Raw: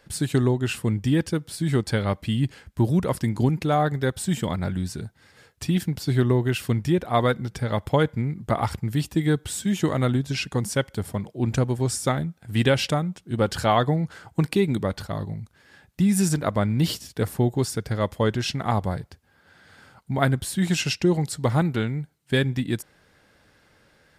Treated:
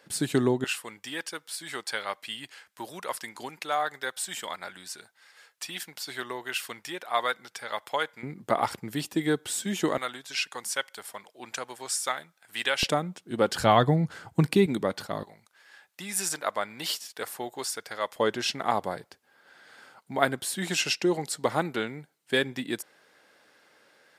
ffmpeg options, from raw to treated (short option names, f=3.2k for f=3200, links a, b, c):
-af "asetnsamples=n=441:p=0,asendcmd='0.64 highpass f 920;8.23 highpass f 310;9.98 highpass f 980;12.83 highpass f 270;13.6 highpass f 100;14.66 highpass f 250;15.23 highpass f 760;18.16 highpass f 360',highpass=220"